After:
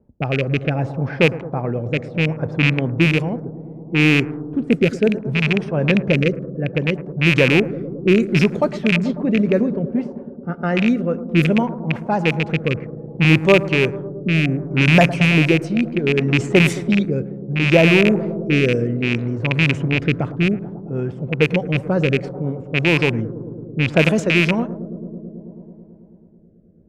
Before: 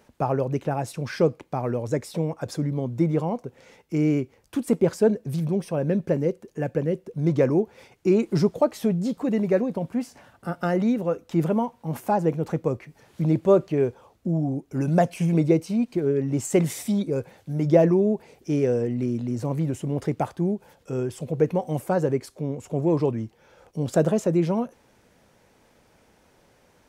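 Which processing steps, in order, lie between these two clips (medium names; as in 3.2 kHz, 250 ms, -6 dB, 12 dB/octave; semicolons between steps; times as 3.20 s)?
rattle on loud lows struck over -23 dBFS, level -14 dBFS; tone controls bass +5 dB, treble +3 dB; bucket-brigade echo 109 ms, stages 1024, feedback 85%, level -14.5 dB; dynamic bell 2.1 kHz, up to +6 dB, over -39 dBFS, Q 0.8; level-controlled noise filter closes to 380 Hz, open at -13 dBFS; rotary cabinet horn 0.65 Hz; trim +4 dB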